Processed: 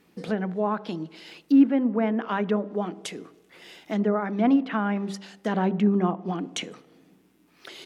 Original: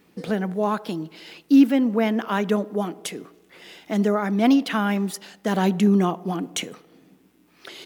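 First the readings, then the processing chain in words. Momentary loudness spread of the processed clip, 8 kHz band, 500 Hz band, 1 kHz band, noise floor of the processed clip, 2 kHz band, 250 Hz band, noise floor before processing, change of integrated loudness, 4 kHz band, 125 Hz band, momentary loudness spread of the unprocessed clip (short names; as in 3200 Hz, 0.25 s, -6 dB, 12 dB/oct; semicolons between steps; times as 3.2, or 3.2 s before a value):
15 LU, -7.0 dB, -3.0 dB, -3.0 dB, -62 dBFS, -4.5 dB, -3.0 dB, -59 dBFS, -3.0 dB, -5.5 dB, -3.5 dB, 14 LU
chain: de-hum 65.37 Hz, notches 9; treble ducked by the level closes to 1800 Hz, closed at -18 dBFS; gain -2.5 dB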